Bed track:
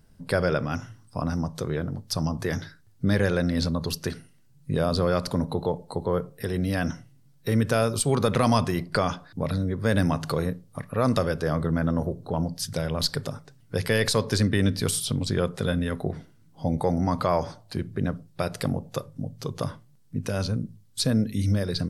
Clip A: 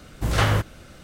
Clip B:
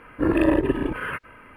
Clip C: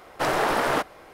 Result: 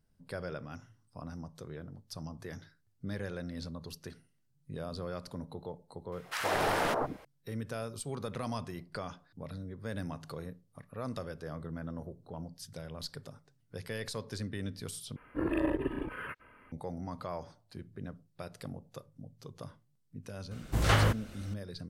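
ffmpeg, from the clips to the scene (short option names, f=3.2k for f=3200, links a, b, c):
-filter_complex "[0:a]volume=-16dB[a];[3:a]acrossover=split=290|1200[b][c][d];[c]adelay=120[e];[b]adelay=220[f];[f][e][d]amix=inputs=3:normalize=0[g];[a]asplit=2[h][i];[h]atrim=end=15.164[j];[2:a]atrim=end=1.56,asetpts=PTS-STARTPTS,volume=-11.5dB[k];[i]atrim=start=16.716[l];[g]atrim=end=1.13,asetpts=PTS-STARTPTS,volume=-5dB,afade=t=in:d=0.004:c=hsin,afade=t=out:st=1.126:d=0.004:c=hsin,adelay=6120[m];[1:a]atrim=end=1.03,asetpts=PTS-STARTPTS,volume=-5dB,afade=t=in:d=0.004:c=hsin,afade=t=out:st=1.026:d=0.004:c=hsin,adelay=20510[n];[j][k]acrossfade=d=0.004:c1=hsin:c2=hsin[o];[o][l]acrossfade=d=0.004:c1=hsin:c2=hsin[p];[p][m][n]amix=inputs=3:normalize=0"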